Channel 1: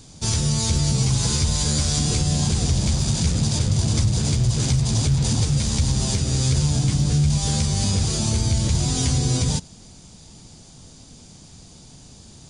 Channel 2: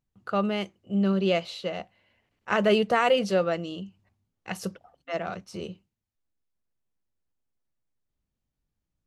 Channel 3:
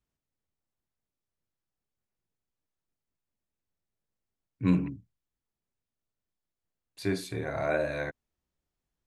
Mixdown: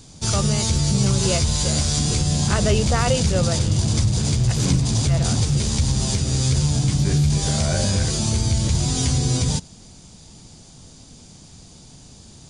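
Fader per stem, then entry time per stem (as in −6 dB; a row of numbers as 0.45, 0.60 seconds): +0.5, −1.0, −0.5 decibels; 0.00, 0.00, 0.00 seconds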